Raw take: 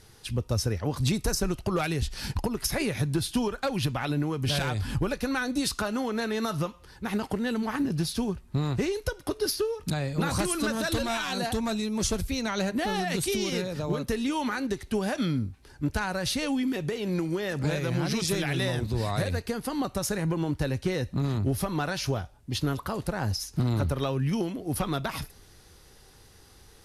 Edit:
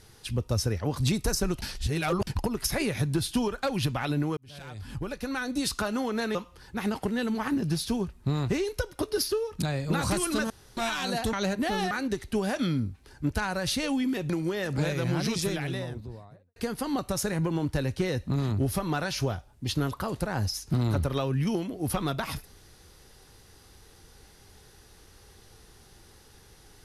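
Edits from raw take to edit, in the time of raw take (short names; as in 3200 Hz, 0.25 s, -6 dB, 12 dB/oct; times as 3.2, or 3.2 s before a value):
1.62–2.27 reverse
4.37–5.8 fade in
6.35–6.63 cut
10.78–11.05 room tone
11.61–12.49 cut
13.07–14.5 cut
16.89–17.16 cut
18.02–19.42 studio fade out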